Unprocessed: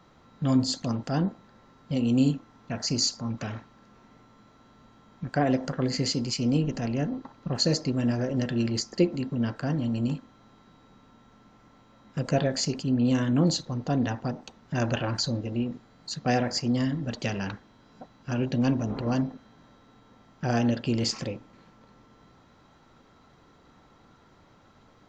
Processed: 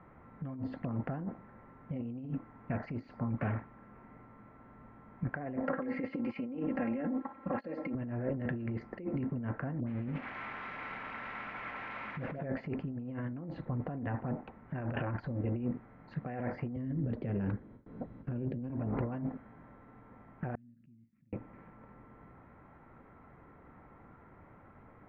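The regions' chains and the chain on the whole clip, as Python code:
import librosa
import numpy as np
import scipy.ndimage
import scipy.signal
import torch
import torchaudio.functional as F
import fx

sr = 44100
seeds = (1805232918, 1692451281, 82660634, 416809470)

y = fx.chain(x, sr, fx.highpass(hz=310.0, slope=6),
    fx.comb(ms=3.7, depth=0.98), at=(5.63, 7.95))
y = fx.chain(y, sr, fx.crossing_spikes(level_db=-18.0),
    fx.dispersion(late='highs', ms=79.0, hz=990.0), at=(9.8, 12.41))
y = fx.chain(y, sr, fx.gate_hold(open_db=-46.0, close_db=-54.0, hold_ms=71.0, range_db=-21, attack_ms=1.4, release_ms=100.0),
    fx.band_shelf(hz=1400.0, db=-11.0, octaves=2.4),
    fx.band_squash(depth_pct=40), at=(16.76, 18.7))
y = fx.chain(y, sr, fx.cheby2_bandstop(low_hz=420.0, high_hz=7100.0, order=4, stop_db=40),
    fx.differentiator(),
    fx.pre_swell(db_per_s=44.0), at=(20.55, 21.33))
y = fx.peak_eq(y, sr, hz=71.0, db=3.5, octaves=1.8)
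y = fx.over_compress(y, sr, threshold_db=-31.0, ratio=-1.0)
y = scipy.signal.sosfilt(scipy.signal.cheby1(4, 1.0, 2200.0, 'lowpass', fs=sr, output='sos'), y)
y = y * 10.0 ** (-3.5 / 20.0)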